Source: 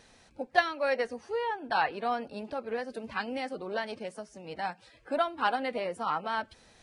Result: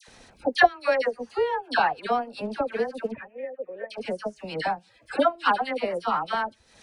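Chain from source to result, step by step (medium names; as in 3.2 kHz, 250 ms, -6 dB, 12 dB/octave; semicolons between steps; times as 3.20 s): in parallel at +3 dB: compression, threshold -37 dBFS, peak gain reduction 18 dB; on the sum: transient shaper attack +7 dB, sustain -11 dB; 3.11–3.90 s: cascade formant filter e; phase dispersion lows, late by 83 ms, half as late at 1.3 kHz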